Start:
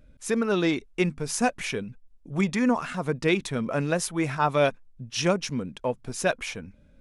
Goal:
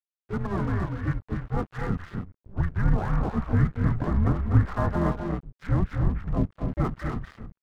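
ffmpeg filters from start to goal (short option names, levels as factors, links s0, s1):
-filter_complex "[0:a]asplit=4[s0][s1][s2][s3];[s1]asetrate=29433,aresample=44100,atempo=1.49831,volume=0.447[s4];[s2]asetrate=37084,aresample=44100,atempo=1.18921,volume=0.316[s5];[s3]asetrate=66075,aresample=44100,atempo=0.66742,volume=0.501[s6];[s0][s4][s5][s6]amix=inputs=4:normalize=0,alimiter=limit=0.158:level=0:latency=1:release=54,highpass=f=310:t=q:w=0.5412,highpass=f=310:t=q:w=1.307,lowpass=f=2000:t=q:w=0.5176,lowpass=f=2000:t=q:w=0.7071,lowpass=f=2000:t=q:w=1.932,afreqshift=-210,asubboost=boost=6.5:cutoff=170,asetrate=40517,aresample=44100,aecho=1:1:244.9|277:0.447|0.447,aeval=exprs='sgn(val(0))*max(abs(val(0))-0.0075,0)':c=same"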